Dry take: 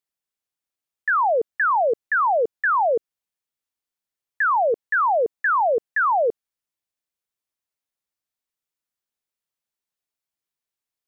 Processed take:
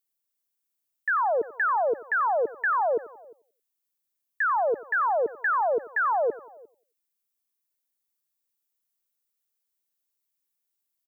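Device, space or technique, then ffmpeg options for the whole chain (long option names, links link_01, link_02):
ducked delay: -filter_complex "[0:a]asplit=3[link_01][link_02][link_03];[link_02]adelay=352,volume=-7dB[link_04];[link_03]apad=whole_len=503769[link_05];[link_04][link_05]sidechaincompress=threshold=-39dB:ratio=10:attack=16:release=1430[link_06];[link_01][link_06]amix=inputs=2:normalize=0,highpass=64,aemphasis=mode=production:type=50kf,equalizer=frequency=320:width=2.5:gain=6,aecho=1:1:90|180|270:0.126|0.0478|0.0182,volume=-5.5dB"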